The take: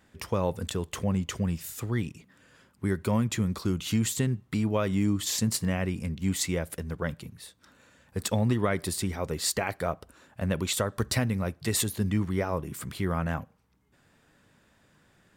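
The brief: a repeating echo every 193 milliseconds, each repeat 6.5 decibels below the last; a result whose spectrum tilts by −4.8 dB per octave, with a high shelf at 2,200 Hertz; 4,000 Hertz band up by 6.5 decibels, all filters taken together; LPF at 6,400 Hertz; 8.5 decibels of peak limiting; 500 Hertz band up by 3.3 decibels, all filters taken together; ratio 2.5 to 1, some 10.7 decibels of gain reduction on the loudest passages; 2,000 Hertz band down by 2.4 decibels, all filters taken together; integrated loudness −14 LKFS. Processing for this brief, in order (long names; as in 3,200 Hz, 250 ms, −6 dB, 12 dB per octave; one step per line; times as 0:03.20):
low-pass filter 6,400 Hz
parametric band 500 Hz +4 dB
parametric band 2,000 Hz −7 dB
high-shelf EQ 2,200 Hz +3.5 dB
parametric band 4,000 Hz +7 dB
downward compressor 2.5 to 1, threshold −37 dBFS
brickwall limiter −27.5 dBFS
repeating echo 193 ms, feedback 47%, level −6.5 dB
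level +23.5 dB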